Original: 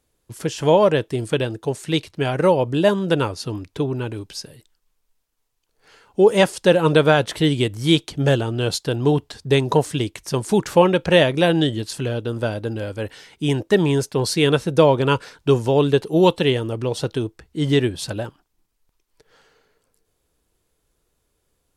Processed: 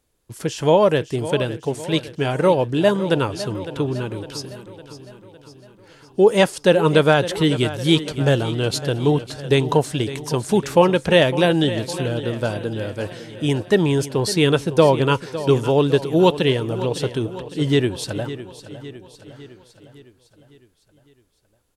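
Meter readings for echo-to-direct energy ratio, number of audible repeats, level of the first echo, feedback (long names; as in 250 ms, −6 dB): −12.5 dB, 5, −14.0 dB, 56%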